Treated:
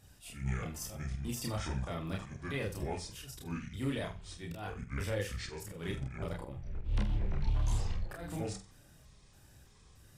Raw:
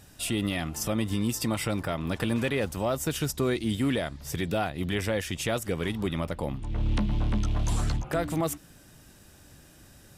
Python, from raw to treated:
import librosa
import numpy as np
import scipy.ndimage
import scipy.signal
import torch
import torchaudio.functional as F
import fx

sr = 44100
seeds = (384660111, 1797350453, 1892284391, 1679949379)

y = fx.pitch_trill(x, sr, semitones=-7.0, every_ms=311)
y = fx.auto_swell(y, sr, attack_ms=170.0)
y = fx.chorus_voices(y, sr, voices=6, hz=0.67, base_ms=30, depth_ms=1.4, mix_pct=50)
y = fx.room_flutter(y, sr, wall_m=8.0, rt60_s=0.29)
y = F.gain(torch.from_numpy(y), -5.5).numpy()